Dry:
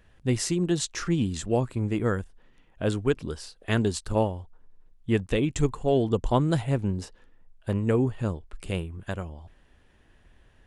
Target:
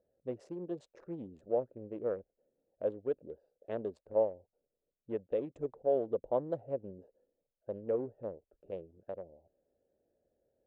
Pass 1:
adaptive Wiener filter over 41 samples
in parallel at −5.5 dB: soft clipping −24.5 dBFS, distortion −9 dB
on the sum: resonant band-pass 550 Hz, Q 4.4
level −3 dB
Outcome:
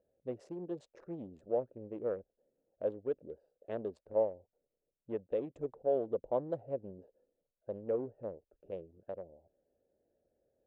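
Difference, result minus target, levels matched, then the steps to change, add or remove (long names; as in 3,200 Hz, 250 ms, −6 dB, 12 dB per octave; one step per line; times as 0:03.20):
soft clipping: distortion +10 dB
change: soft clipping −15.5 dBFS, distortion −19 dB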